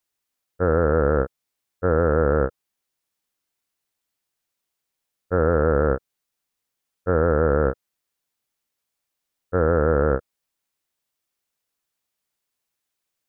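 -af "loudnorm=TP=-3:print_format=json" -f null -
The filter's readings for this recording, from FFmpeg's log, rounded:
"input_i" : "-21.6",
"input_tp" : "-7.6",
"input_lra" : "4.4",
"input_thresh" : "-31.9",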